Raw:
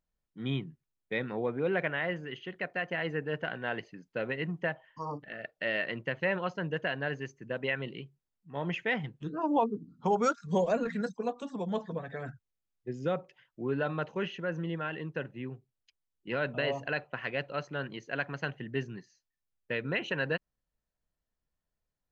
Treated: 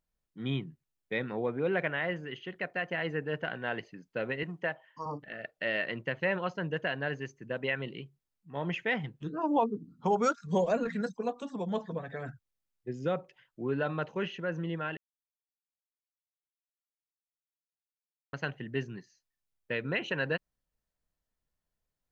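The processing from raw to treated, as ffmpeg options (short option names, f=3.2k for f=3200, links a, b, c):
-filter_complex "[0:a]asettb=1/sr,asplit=3[a][b][c];[a]atrim=end=4.434[d];[b]atrim=start=4.43:end=5.06,asetpts=PTS-STARTPTS,afade=t=in:d=0.004:c=qsin,afade=t=out:st=0.626:d=0.004:c=qsin,highpass=f=270:p=1[e];[c]atrim=start=5.056[f];[d][e]acrossfade=d=0.004:c1=hsin:c2=qsin[g];[g][f]acrossfade=d=0.004:c1=qsin:c2=hsin,asplit=3[h][i][j];[h]atrim=end=14.97,asetpts=PTS-STARTPTS,afade=t=out:st=14.966:d=0.004:c=hsin[k];[i]atrim=start=14.97:end=18.33,asetpts=PTS-STARTPTS,volume=0[l];[j]atrim=start=18.33,asetpts=PTS-STARTPTS,afade=t=in:d=0.004:c=hsin[m];[k][l][m]concat=n=3:v=0:a=1"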